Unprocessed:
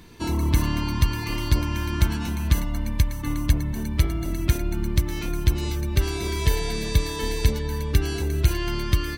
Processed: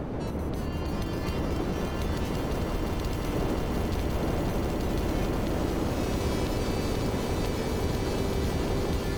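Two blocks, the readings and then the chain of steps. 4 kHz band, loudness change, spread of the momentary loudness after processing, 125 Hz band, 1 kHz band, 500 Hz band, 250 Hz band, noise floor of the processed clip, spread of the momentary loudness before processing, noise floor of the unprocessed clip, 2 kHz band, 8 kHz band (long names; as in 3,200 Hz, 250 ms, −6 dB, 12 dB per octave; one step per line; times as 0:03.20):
−6.5 dB, −4.5 dB, 3 LU, −7.0 dB, 0.0 dB, +2.0 dB, −1.0 dB, −32 dBFS, 4 LU, −30 dBFS, −5.5 dB, −7.5 dB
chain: wind on the microphone 380 Hz −19 dBFS
downward compressor, threshold −19 dBFS, peak gain reduction 13.5 dB
delay with pitch and tempo change per echo 376 ms, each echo +2 semitones, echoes 3
brickwall limiter −14 dBFS, peak gain reduction 6.5 dB
on a send: echo that builds up and dies away 176 ms, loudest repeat 8, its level −10 dB
on the sum: level −8.5 dB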